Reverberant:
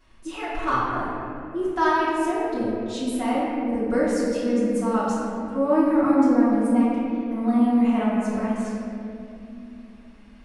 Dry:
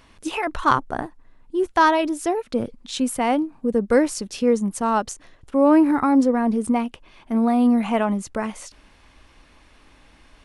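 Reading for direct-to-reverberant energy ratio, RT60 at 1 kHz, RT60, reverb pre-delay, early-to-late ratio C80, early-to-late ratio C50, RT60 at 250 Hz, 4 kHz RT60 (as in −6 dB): −12.5 dB, 2.3 s, 2.8 s, 3 ms, −0.5 dB, −2.0 dB, 4.3 s, 1.5 s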